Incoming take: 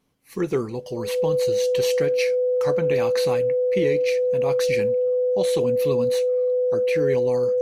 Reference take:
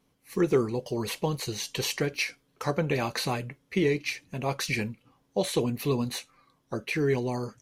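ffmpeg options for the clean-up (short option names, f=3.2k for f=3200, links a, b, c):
-af "bandreject=f=500:w=30"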